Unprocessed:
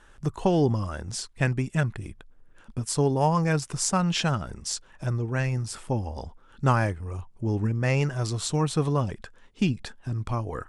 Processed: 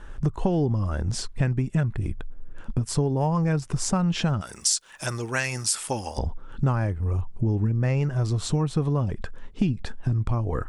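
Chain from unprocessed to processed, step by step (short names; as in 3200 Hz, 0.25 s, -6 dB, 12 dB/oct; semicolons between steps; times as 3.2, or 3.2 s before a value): tilt -2 dB/oct, from 4.4 s +4 dB/oct, from 6.17 s -2 dB/oct; compressor 4:1, threshold -29 dBFS, peak gain reduction 14 dB; gain +7 dB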